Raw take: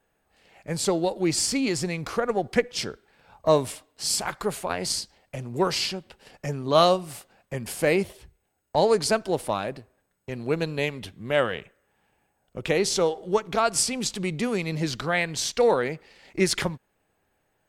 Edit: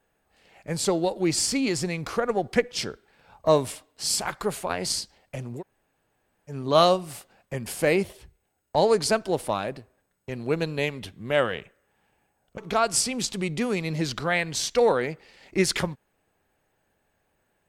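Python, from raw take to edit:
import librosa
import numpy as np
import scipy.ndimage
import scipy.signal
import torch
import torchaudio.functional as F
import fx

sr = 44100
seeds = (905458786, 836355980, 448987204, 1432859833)

y = fx.edit(x, sr, fx.room_tone_fill(start_s=5.58, length_s=0.94, crossfade_s=0.1),
    fx.cut(start_s=12.58, length_s=0.82), tone=tone)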